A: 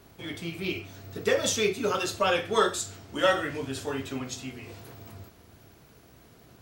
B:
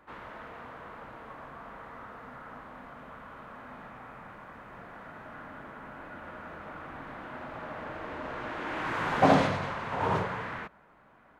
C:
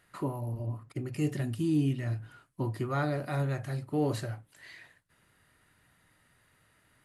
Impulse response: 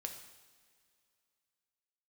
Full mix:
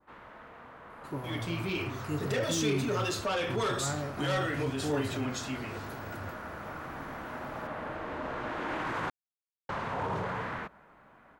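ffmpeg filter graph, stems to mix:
-filter_complex "[0:a]highshelf=f=7400:g=-5.5,asoftclip=type=tanh:threshold=0.0708,adelay=1050,volume=0.531[s0];[1:a]adynamicequalizer=threshold=0.00501:dfrequency=2300:dqfactor=0.94:tfrequency=2300:tqfactor=0.94:attack=5:release=100:ratio=0.375:range=1.5:mode=cutabove:tftype=bell,volume=0.501,asplit=3[s1][s2][s3];[s1]atrim=end=9.1,asetpts=PTS-STARTPTS,afade=t=out:st=9.096:d=0.004:c=hsin[s4];[s2]atrim=start=9.1:end=9.69,asetpts=PTS-STARTPTS,volume=0[s5];[s3]atrim=start=9.69,asetpts=PTS-STARTPTS,afade=t=in:d=0.004:c=hsin[s6];[s4][s5][s6]concat=n=3:v=0:a=1[s7];[2:a]adelay=900,volume=0.562[s8];[s0][s7]amix=inputs=2:normalize=0,dynaudnorm=f=810:g=3:m=2.51,alimiter=level_in=1.19:limit=0.0631:level=0:latency=1:release=18,volume=0.841,volume=1[s9];[s8][s9]amix=inputs=2:normalize=0"

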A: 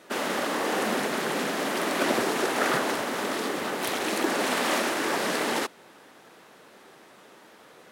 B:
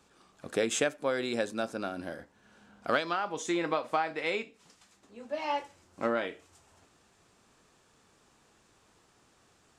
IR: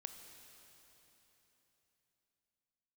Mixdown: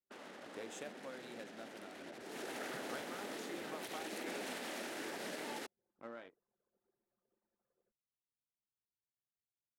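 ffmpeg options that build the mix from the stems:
-filter_complex "[0:a]adynamicequalizer=threshold=0.00447:dfrequency=1100:dqfactor=3:tfrequency=1100:tqfactor=3:attack=5:release=100:ratio=0.375:range=4:mode=cutabove:tftype=bell,alimiter=limit=0.106:level=0:latency=1:release=41,volume=0.178,afade=t=in:st=2.2:d=0.27:silence=0.398107[s0];[1:a]highpass=92,volume=0.1[s1];[s0][s1]amix=inputs=2:normalize=0,anlmdn=0.000398"

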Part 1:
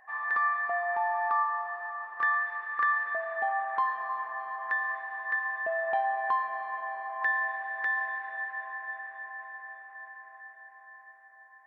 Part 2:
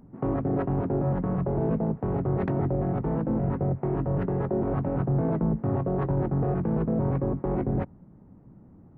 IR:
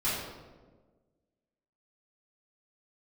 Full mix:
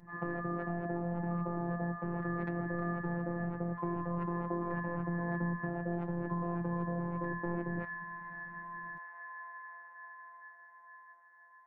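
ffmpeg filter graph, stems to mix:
-filter_complex "[0:a]lowpass=f=1200:p=1,acompressor=threshold=0.01:ratio=16,volume=0.596,asplit=2[s0][s1];[s1]volume=0.422[s2];[1:a]acompressor=threshold=0.0398:ratio=6,volume=0.794[s3];[2:a]atrim=start_sample=2205[s4];[s2][s4]afir=irnorm=-1:irlink=0[s5];[s0][s3][s5]amix=inputs=3:normalize=0,afftfilt=real='hypot(re,im)*cos(PI*b)':imag='0':win_size=1024:overlap=0.75"

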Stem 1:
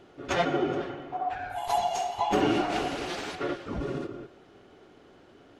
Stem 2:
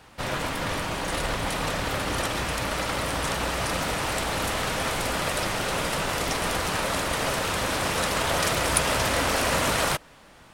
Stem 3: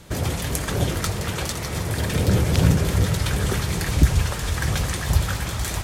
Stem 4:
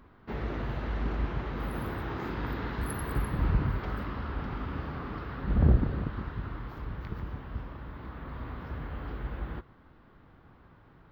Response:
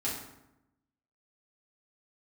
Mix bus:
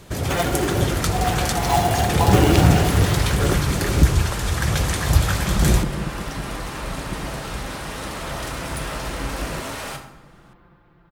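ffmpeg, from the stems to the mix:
-filter_complex "[0:a]acrusher=bits=3:mode=log:mix=0:aa=0.000001,volume=1.33[s0];[1:a]asoftclip=type=tanh:threshold=0.0794,volume=0.178,asplit=2[s1][s2];[s2]volume=0.668[s3];[2:a]volume=0.944[s4];[3:a]aecho=1:1:5.8:0.96,volume=0.891[s5];[4:a]atrim=start_sample=2205[s6];[s3][s6]afir=irnorm=-1:irlink=0[s7];[s0][s1][s4][s5][s7]amix=inputs=5:normalize=0,dynaudnorm=f=130:g=11:m=2"

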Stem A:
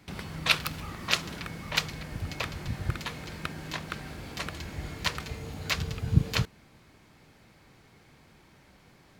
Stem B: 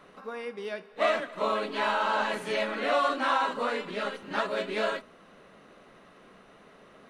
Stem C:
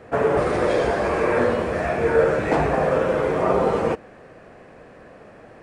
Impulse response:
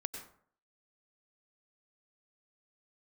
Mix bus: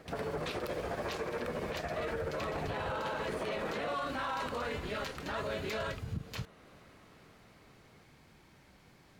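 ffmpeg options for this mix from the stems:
-filter_complex "[0:a]acompressor=threshold=0.0126:ratio=2,volume=0.708[s0];[1:a]dynaudnorm=f=820:g=5:m=3.55,adelay=950,volume=0.2[s1];[2:a]acompressor=threshold=0.0794:ratio=6,tremolo=f=14:d=0.78,volume=0.501[s2];[s0][s1][s2]amix=inputs=3:normalize=0,alimiter=level_in=1.58:limit=0.0631:level=0:latency=1:release=22,volume=0.631"

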